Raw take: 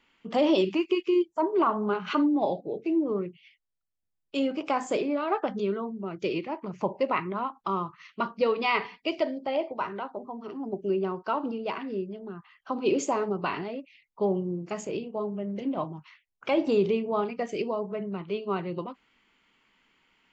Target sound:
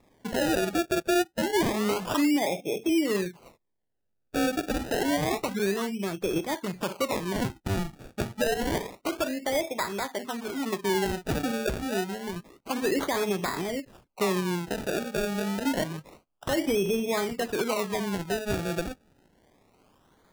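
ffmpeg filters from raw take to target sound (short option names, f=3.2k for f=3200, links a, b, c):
-filter_complex "[0:a]asplit=2[a][b];[b]acompressor=threshold=-34dB:ratio=6,volume=-2dB[c];[a][c]amix=inputs=2:normalize=0,alimiter=limit=-18dB:level=0:latency=1:release=69,acrusher=samples=29:mix=1:aa=0.000001:lfo=1:lforange=29:lforate=0.28"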